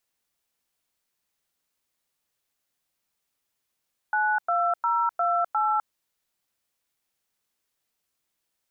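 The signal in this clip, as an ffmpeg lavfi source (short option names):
-f lavfi -i "aevalsrc='0.0668*clip(min(mod(t,0.354),0.254-mod(t,0.354))/0.002,0,1)*(eq(floor(t/0.354),0)*(sin(2*PI*852*mod(t,0.354))+sin(2*PI*1477*mod(t,0.354)))+eq(floor(t/0.354),1)*(sin(2*PI*697*mod(t,0.354))+sin(2*PI*1336*mod(t,0.354)))+eq(floor(t/0.354),2)*(sin(2*PI*941*mod(t,0.354))+sin(2*PI*1336*mod(t,0.354)))+eq(floor(t/0.354),3)*(sin(2*PI*697*mod(t,0.354))+sin(2*PI*1336*mod(t,0.354)))+eq(floor(t/0.354),4)*(sin(2*PI*852*mod(t,0.354))+sin(2*PI*1336*mod(t,0.354))))':d=1.77:s=44100"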